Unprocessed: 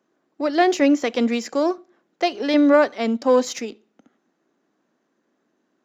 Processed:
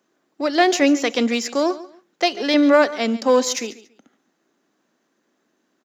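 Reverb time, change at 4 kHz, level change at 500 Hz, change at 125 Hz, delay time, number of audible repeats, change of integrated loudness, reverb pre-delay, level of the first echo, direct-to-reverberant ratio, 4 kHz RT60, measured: no reverb audible, +6.5 dB, +0.5 dB, can't be measured, 141 ms, 2, +1.0 dB, no reverb audible, −17.0 dB, no reverb audible, no reverb audible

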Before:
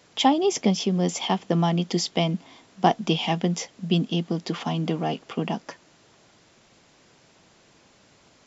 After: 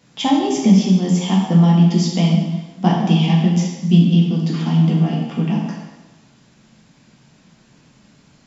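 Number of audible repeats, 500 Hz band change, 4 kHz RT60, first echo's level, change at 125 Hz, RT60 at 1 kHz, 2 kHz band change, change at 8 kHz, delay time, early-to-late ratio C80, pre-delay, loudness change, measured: no echo audible, +0.5 dB, 1.0 s, no echo audible, +13.0 dB, 1.1 s, +2.0 dB, can't be measured, no echo audible, 4.0 dB, 5 ms, +9.0 dB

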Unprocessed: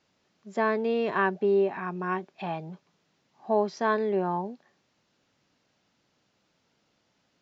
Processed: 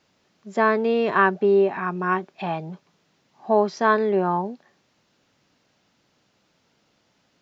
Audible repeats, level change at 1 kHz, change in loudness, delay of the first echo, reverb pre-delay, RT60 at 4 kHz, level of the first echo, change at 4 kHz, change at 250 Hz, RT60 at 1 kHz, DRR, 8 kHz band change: no echo audible, +7.0 dB, +6.0 dB, no echo audible, no reverb audible, no reverb audible, no echo audible, +5.5 dB, +5.5 dB, no reverb audible, no reverb audible, can't be measured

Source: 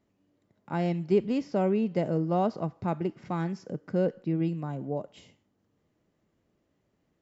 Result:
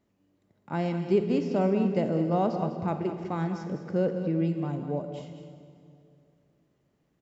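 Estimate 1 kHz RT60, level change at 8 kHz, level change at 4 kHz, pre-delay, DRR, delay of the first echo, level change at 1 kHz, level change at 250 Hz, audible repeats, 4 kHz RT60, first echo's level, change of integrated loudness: 2.3 s, can't be measured, +1.0 dB, 23 ms, 5.5 dB, 202 ms, +1.0 dB, +1.5 dB, 1, 2.1 s, −10.5 dB, +1.0 dB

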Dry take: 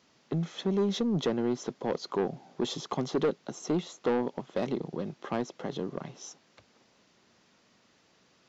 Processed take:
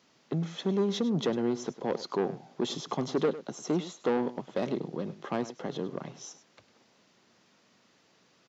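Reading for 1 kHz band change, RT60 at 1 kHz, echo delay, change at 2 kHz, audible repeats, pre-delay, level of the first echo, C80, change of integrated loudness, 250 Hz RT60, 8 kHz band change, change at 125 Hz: 0.0 dB, no reverb audible, 102 ms, 0.0 dB, 1, no reverb audible, −15.0 dB, no reverb audible, 0.0 dB, no reverb audible, can't be measured, −0.5 dB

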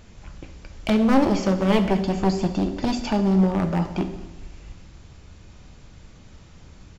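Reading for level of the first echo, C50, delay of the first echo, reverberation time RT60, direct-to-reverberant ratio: −20.0 dB, 9.5 dB, 223 ms, 1.1 s, 6.5 dB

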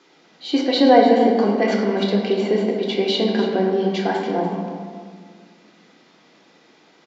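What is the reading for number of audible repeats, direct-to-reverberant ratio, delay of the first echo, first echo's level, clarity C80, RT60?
1, −1.5 dB, 289 ms, −11.0 dB, 3.5 dB, 1.8 s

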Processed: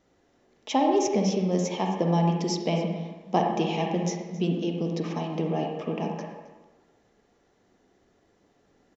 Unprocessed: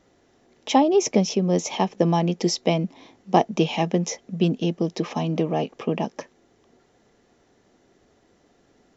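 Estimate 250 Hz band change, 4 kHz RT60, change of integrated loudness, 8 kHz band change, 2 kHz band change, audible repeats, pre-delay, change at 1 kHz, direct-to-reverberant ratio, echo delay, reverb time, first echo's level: −3.5 dB, 0.90 s, −4.0 dB, can't be measured, −4.5 dB, 1, 39 ms, −3.0 dB, 1.5 dB, 268 ms, 1.2 s, −17.5 dB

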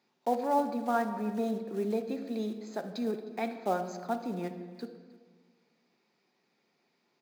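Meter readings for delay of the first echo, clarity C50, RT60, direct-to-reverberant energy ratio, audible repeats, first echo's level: 310 ms, 8.5 dB, 1.5 s, 6.5 dB, 1, −20.5 dB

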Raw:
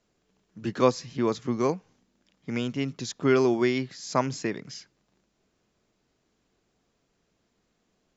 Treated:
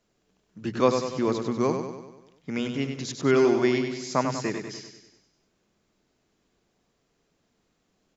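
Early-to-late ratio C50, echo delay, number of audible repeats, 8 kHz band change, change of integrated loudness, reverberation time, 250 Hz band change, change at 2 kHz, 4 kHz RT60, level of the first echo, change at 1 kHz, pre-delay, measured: no reverb audible, 97 ms, 6, can't be measured, +1.5 dB, no reverb audible, +1.0 dB, +1.0 dB, no reverb audible, −6.5 dB, +1.0 dB, no reverb audible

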